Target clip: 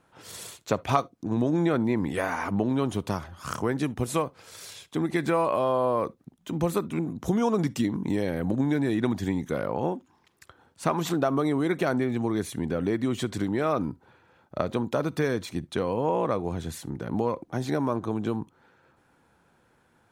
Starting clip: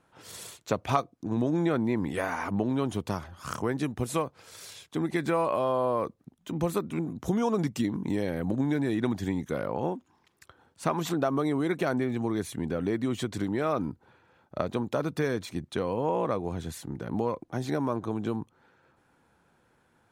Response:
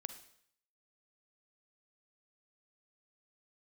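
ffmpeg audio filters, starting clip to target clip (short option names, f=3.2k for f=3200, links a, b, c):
-filter_complex "[0:a]asplit=2[a][b];[1:a]atrim=start_sample=2205,atrim=end_sample=3528[c];[b][c]afir=irnorm=-1:irlink=0,volume=-7dB[d];[a][d]amix=inputs=2:normalize=0"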